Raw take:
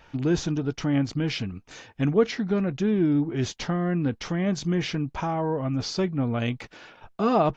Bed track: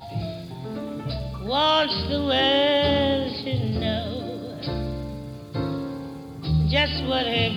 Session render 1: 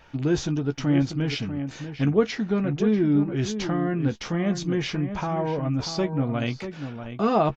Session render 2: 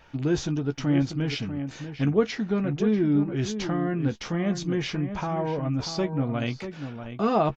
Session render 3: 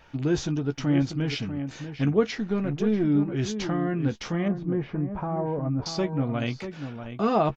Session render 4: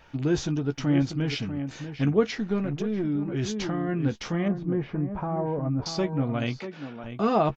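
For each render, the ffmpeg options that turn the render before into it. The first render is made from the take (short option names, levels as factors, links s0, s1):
-filter_complex "[0:a]asplit=2[s0][s1];[s1]adelay=14,volume=0.282[s2];[s0][s2]amix=inputs=2:normalize=0,asplit=2[s3][s4];[s4]adelay=641.4,volume=0.355,highshelf=f=4000:g=-14.4[s5];[s3][s5]amix=inputs=2:normalize=0"
-af "volume=0.841"
-filter_complex "[0:a]asettb=1/sr,asplit=3[s0][s1][s2];[s0]atrim=end=2.384[s3];[s1]atrim=start=2.38:end=3.05,asetpts=PTS-STARTPTS,afade=t=in:d=0.004:c=qsin,afade=t=out:st=0.666:d=0.004:c=qsin,aeval=exprs='if(lt(val(0),0),0.708*val(0),val(0))':c=same[s4];[s2]atrim=start=3.046[s5];[s3][s4]acrossfade=d=0.004:c1=hsin:c2=qsin[s6];[s6][s5]acrossfade=d=0.004:c1=qsin:c2=hsin,asettb=1/sr,asplit=3[s7][s8][s9];[s7]atrim=end=4.484[s10];[s8]atrim=start=4.48:end=5.86,asetpts=PTS-STARTPTS,afade=t=in:d=0.004:c=qsin,afade=t=out:st=1.376:d=0.004:c=qsin,lowpass=1100[s11];[s9]atrim=start=5.856[s12];[s10][s11]acrossfade=d=0.004:c1=hsin:c2=qsin[s13];[s13][s12]acrossfade=d=0.004:c1=qsin:c2=hsin"
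-filter_complex "[0:a]asettb=1/sr,asplit=3[s0][s1][s2];[s0]atrim=end=2.584[s3];[s1]atrim=start=2.58:end=3.89,asetpts=PTS-STARTPTS,afade=t=in:d=0.004:c=qsin,afade=t=out:st=1.306:d=0.004:c=qsin,acompressor=threshold=0.0708:ratio=6:attack=3.2:release=140:knee=1:detection=peak[s4];[s2]atrim=start=3.886[s5];[s3][s4]acrossfade=d=0.004:c1=hsin:c2=qsin[s6];[s6][s5]acrossfade=d=0.004:c1=qsin:c2=hsin,asettb=1/sr,asplit=3[s7][s8][s9];[s7]atrim=end=6.594[s10];[s8]atrim=start=6.59:end=7.04,asetpts=PTS-STARTPTS,afade=t=in:d=0.004:c=qsin,afade=t=out:st=0.446:d=0.004:c=qsin,highpass=190,lowpass=5200[s11];[s9]atrim=start=7.036[s12];[s10][s11]acrossfade=d=0.004:c1=hsin:c2=qsin[s13];[s13][s12]acrossfade=d=0.004:c1=qsin:c2=hsin"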